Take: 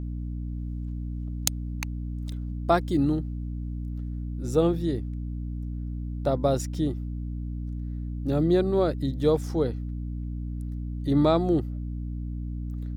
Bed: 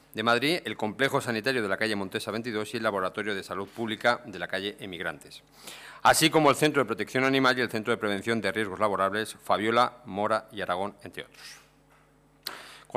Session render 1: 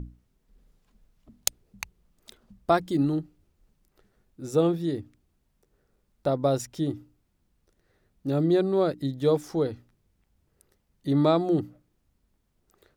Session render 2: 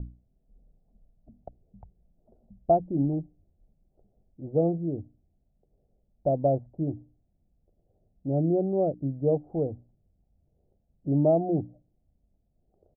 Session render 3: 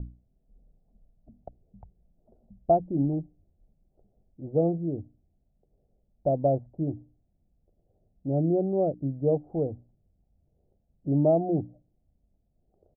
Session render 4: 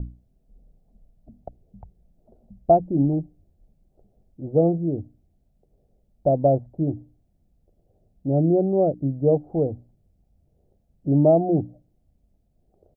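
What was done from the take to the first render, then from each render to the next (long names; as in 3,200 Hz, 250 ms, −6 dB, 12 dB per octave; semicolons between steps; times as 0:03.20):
mains-hum notches 60/120/180/240/300 Hz
elliptic low-pass filter 710 Hz, stop band 80 dB; comb filter 1.4 ms, depth 34%
no processing that can be heard
level +5.5 dB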